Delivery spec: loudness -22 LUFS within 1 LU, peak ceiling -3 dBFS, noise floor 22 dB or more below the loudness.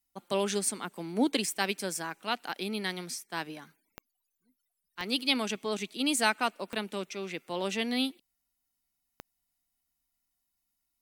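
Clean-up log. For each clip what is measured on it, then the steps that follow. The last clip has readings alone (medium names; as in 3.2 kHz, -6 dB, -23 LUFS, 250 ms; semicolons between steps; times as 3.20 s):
clicks found 4; loudness -31.5 LUFS; peak level -9.5 dBFS; loudness target -22.0 LUFS
-> de-click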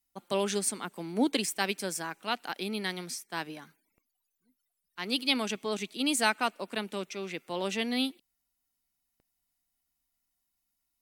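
clicks found 0; loudness -31.5 LUFS; peak level -9.5 dBFS; loudness target -22.0 LUFS
-> trim +9.5 dB; peak limiter -3 dBFS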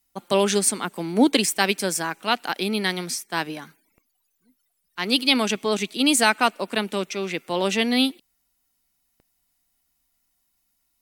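loudness -22.5 LUFS; peak level -3.0 dBFS; noise floor -72 dBFS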